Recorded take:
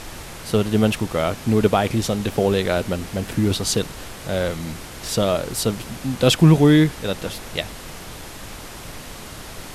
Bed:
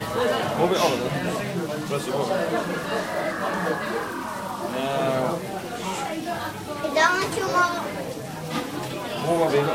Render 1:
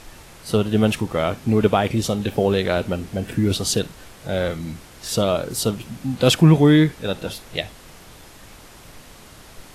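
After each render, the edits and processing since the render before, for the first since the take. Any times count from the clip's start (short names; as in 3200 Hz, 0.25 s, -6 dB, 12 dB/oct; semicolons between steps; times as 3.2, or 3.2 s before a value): noise print and reduce 8 dB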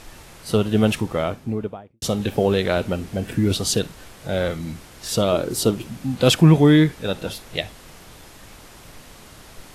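0.96–2.02 studio fade out; 5.32–5.87 bell 340 Hz +7.5 dB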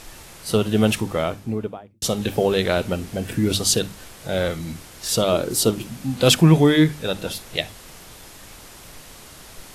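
high shelf 4000 Hz +5.5 dB; notches 50/100/150/200/250/300 Hz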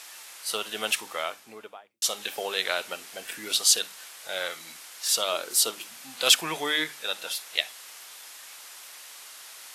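Bessel high-pass 1300 Hz, order 2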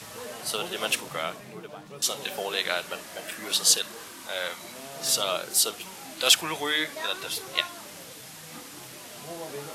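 add bed -17.5 dB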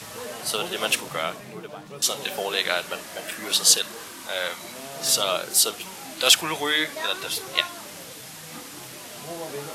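gain +3.5 dB; limiter -1 dBFS, peak gain reduction 1 dB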